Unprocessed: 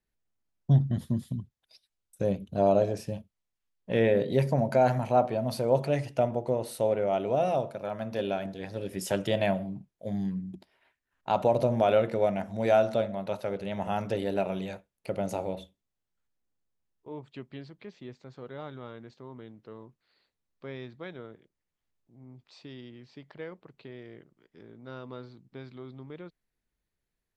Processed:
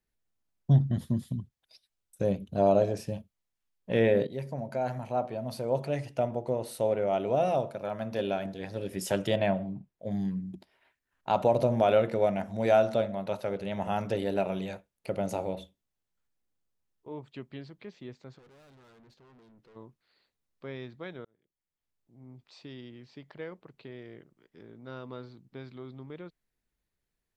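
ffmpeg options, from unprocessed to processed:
ffmpeg -i in.wav -filter_complex "[0:a]asettb=1/sr,asplit=3[link_01][link_02][link_03];[link_01]atrim=end=9.364[link_04];[link_02]atrim=start=9.36:end=10.11,asetpts=PTS-STARTPTS,afade=type=in:duration=0.004:curve=qsin,afade=type=out:start_time=0.746:duration=0.004:curve=qsin,lowpass=frequency=2800:poles=1[link_05];[link_03]atrim=start=10.106[link_06];[link_04][link_05]acrossfade=duration=0.004:curve1=hsin:curve2=qsin[link_07];[link_07][link_06]acrossfade=duration=0.004:curve1=qsin:curve2=hsin,asplit=3[link_08][link_09][link_10];[link_08]afade=type=out:start_time=18.37:duration=0.02[link_11];[link_09]aeval=exprs='(tanh(631*val(0)+0.25)-tanh(0.25))/631':channel_layout=same,afade=type=in:start_time=18.37:duration=0.02,afade=type=out:start_time=19.75:duration=0.02[link_12];[link_10]afade=type=in:start_time=19.75:duration=0.02[link_13];[link_11][link_12][link_13]amix=inputs=3:normalize=0,asplit=3[link_14][link_15][link_16];[link_14]atrim=end=4.27,asetpts=PTS-STARTPTS,afade=type=out:start_time=4.266:duration=0.004:curve=hsin:silence=0.237137[link_17];[link_15]atrim=start=4.27:end=21.25,asetpts=PTS-STARTPTS,afade=type=in:duration=3.09:silence=0.237137,afade=type=out:start_time=16.976:duration=0.004:curve=hsin[link_18];[link_16]atrim=start=21.25,asetpts=PTS-STARTPTS,afade=type=in:duration=1.04[link_19];[link_17][link_18][link_19]concat=n=3:v=0:a=1" out.wav

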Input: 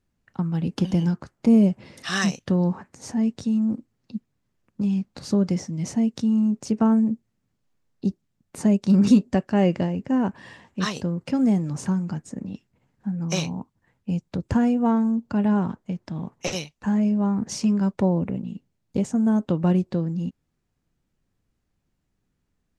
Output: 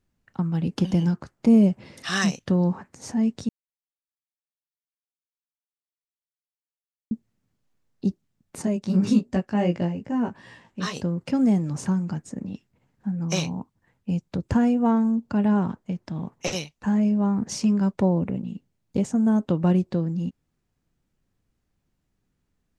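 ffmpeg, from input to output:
ffmpeg -i in.wav -filter_complex "[0:a]asettb=1/sr,asplit=3[link_01][link_02][link_03];[link_01]atrim=end=8.624[link_04];[link_02]atrim=start=8.62:end=10.94,asetpts=PTS-STARTPTS,afade=type=in:duration=0.004:curve=qsin,afade=type=out:start_time=2.316:duration=0.004:curve=qsin,flanger=delay=16.5:depth=2.2:speed=2.6[link_05];[link_03]atrim=start=10.936[link_06];[link_04][link_05]acrossfade=duration=0.004:curve1=hsin:curve2=qsin[link_07];[link_07][link_06]acrossfade=duration=0.004:curve1=qsin:curve2=hsin,asplit=3[link_08][link_09][link_10];[link_08]atrim=end=3.49,asetpts=PTS-STARTPTS,afade=type=out:start_time=3.486:duration=0.004:curve=hsin[link_11];[link_09]atrim=start=3.49:end=7.11,asetpts=PTS-STARTPTS,volume=0[link_12];[link_10]atrim=start=7.11,asetpts=PTS-STARTPTS,afade=type=in:duration=0.004:curve=hsin[link_13];[link_11][link_12][link_13]concat=n=3:v=0:a=1" out.wav

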